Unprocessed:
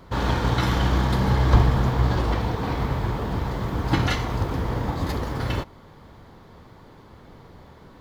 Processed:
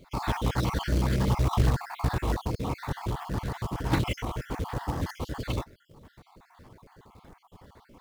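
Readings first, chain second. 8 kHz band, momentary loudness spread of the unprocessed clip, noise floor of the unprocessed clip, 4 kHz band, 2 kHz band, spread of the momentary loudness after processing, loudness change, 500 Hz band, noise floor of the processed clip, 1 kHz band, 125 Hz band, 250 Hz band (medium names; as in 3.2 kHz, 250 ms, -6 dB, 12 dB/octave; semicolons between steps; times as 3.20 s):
-1.5 dB, 9 LU, -48 dBFS, -6.5 dB, -7.0 dB, 9 LU, -6.0 dB, -6.0 dB, -63 dBFS, -6.0 dB, -6.0 dB, -5.5 dB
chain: random holes in the spectrogram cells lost 49%; short-mantissa float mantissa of 2-bit; loudspeaker Doppler distortion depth 0.23 ms; trim -3.5 dB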